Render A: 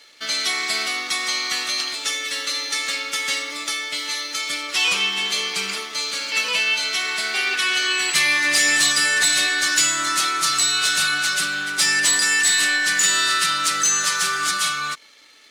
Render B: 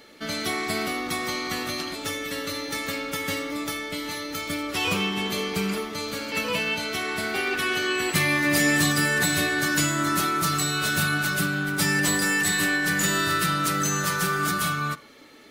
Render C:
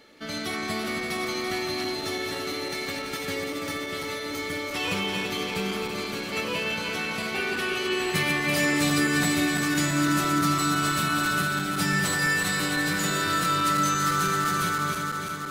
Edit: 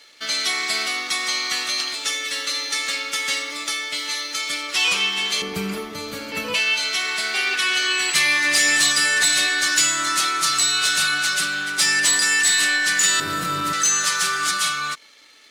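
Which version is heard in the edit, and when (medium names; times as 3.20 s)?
A
5.42–6.54 s: from B
13.20–13.73 s: from C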